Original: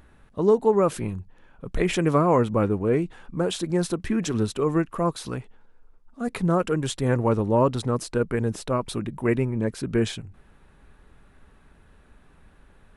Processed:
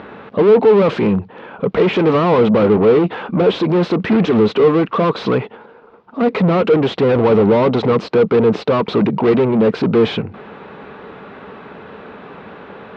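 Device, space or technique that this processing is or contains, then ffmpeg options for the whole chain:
overdrive pedal into a guitar cabinet: -filter_complex "[0:a]asettb=1/sr,asplit=3[link_01][link_02][link_03];[link_01]atrim=end=2.514[link_04];[link_02]atrim=start=2.51:end=3.48,asetpts=PTS-STARTPTS,afade=type=in:duration=0.004:curve=qsin,afade=type=out:start_time=0.966:duration=0.004:curve=qsin,asplit=2[link_05][link_06];[link_06]adelay=18,volume=-13.5dB[link_07];[link_05][link_07]amix=inputs=2:normalize=0,atrim=end_sample=42777[link_08];[link_03]atrim=start=3.476[link_09];[link_04][link_08]acrossfade=duration=0.004:curve1=hsin:curve2=qsin[link_10];[link_10][link_09]acrossfade=duration=0.004:curve1=qsin:curve2=hsin,asplit=2[link_11][link_12];[link_12]highpass=frequency=720:poles=1,volume=36dB,asoftclip=type=tanh:threshold=-8dB[link_13];[link_11][link_13]amix=inputs=2:normalize=0,lowpass=frequency=1300:poles=1,volume=-6dB,highpass=100,equalizer=frequency=200:width_type=q:width=4:gain=6,equalizer=frequency=450:width_type=q:width=4:gain=7,equalizer=frequency=1700:width_type=q:width=4:gain=-5,lowpass=frequency=4200:width=0.5412,lowpass=frequency=4200:width=1.3066"

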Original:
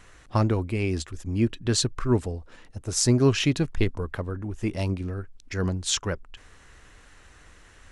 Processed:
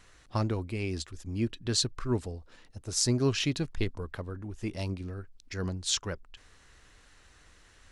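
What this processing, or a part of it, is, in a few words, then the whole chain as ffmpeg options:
presence and air boost: -af "equalizer=frequency=4400:width_type=o:width=0.9:gain=5.5,highshelf=frequency=9400:gain=3.5,volume=-7dB"

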